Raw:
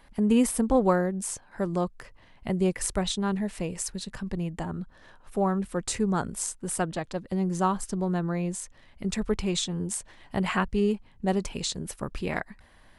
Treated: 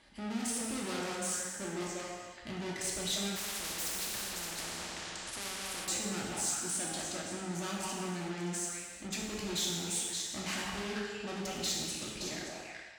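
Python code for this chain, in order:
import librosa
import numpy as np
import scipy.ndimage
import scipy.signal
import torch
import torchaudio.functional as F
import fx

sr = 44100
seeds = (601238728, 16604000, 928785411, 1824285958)

y = fx.fade_out_tail(x, sr, length_s=1.37)
y = scipy.signal.sosfilt(scipy.signal.butter(4, 8900.0, 'lowpass', fs=sr, output='sos'), y)
y = fx.peak_eq(y, sr, hz=320.0, db=12.5, octaves=0.29)
y = fx.echo_stepped(y, sr, ms=190, hz=780.0, octaves=1.4, feedback_pct=70, wet_db=-2)
y = fx.tube_stage(y, sr, drive_db=36.0, bias=0.5)
y = scipy.signal.sosfilt(scipy.signal.butter(2, 55.0, 'highpass', fs=sr, output='sos'), y)
y = fx.peak_eq(y, sr, hz=6000.0, db=9.5, octaves=2.7)
y = fx.notch(y, sr, hz=1000.0, q=10.0)
y = fx.rev_gated(y, sr, seeds[0], gate_ms=470, shape='falling', drr_db=-3.0)
y = fx.spectral_comp(y, sr, ratio=4.0, at=(3.35, 5.87), fade=0.02)
y = y * 10.0 ** (-5.5 / 20.0)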